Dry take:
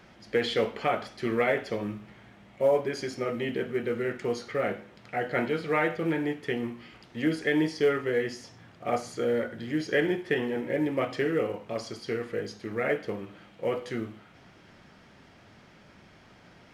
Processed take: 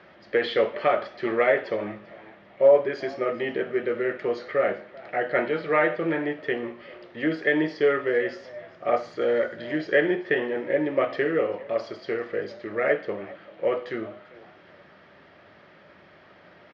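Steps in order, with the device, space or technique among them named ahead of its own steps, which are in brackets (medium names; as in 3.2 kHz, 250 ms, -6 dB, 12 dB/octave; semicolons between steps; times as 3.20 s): frequency-shifting delay pedal into a guitar cabinet (frequency-shifting echo 393 ms, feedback 30%, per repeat +120 Hz, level -21 dB; cabinet simulation 92–4400 Hz, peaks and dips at 120 Hz -7 dB, 230 Hz -5 dB, 370 Hz +4 dB, 590 Hz +9 dB, 1.2 kHz +5 dB, 1.8 kHz +6 dB); 9.21–9.78 s: treble shelf 3.9 kHz +8.5 dB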